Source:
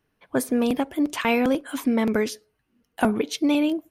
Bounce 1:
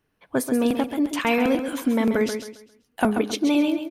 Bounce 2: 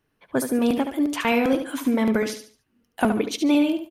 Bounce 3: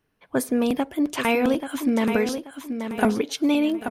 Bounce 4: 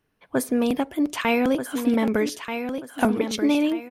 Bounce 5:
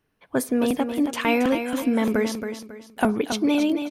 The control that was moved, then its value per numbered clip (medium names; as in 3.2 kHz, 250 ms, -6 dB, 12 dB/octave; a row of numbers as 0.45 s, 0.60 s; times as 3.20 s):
feedback delay, time: 134 ms, 72 ms, 833 ms, 1234 ms, 274 ms